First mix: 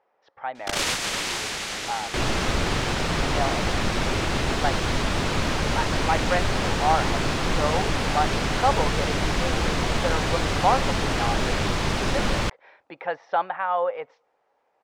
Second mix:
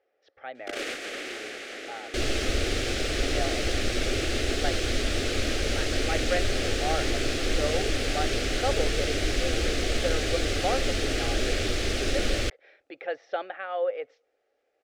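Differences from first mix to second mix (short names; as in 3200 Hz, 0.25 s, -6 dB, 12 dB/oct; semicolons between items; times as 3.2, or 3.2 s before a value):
first sound: add three-band isolator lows -21 dB, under 190 Hz, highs -15 dB, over 2400 Hz; master: add fixed phaser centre 400 Hz, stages 4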